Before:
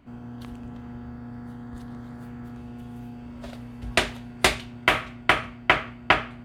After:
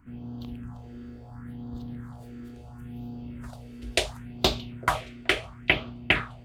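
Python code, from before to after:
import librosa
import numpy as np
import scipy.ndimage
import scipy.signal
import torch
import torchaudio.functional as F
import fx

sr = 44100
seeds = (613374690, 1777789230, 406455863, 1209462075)

y = fx.phaser_stages(x, sr, stages=4, low_hz=140.0, high_hz=1900.0, hz=0.72, feedback_pct=30)
y = fx.echo_stepped(y, sr, ms=427, hz=150.0, octaves=1.4, feedback_pct=70, wet_db=-10.0)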